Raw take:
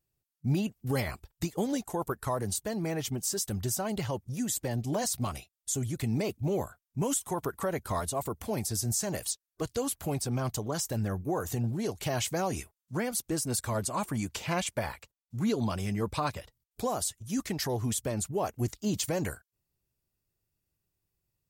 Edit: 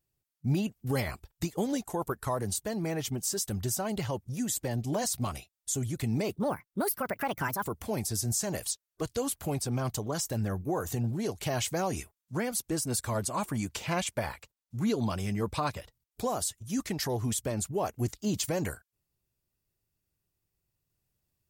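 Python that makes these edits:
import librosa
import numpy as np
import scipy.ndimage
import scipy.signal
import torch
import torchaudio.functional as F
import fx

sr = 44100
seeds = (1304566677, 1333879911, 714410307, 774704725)

y = fx.edit(x, sr, fx.speed_span(start_s=6.34, length_s=1.9, speed=1.46), tone=tone)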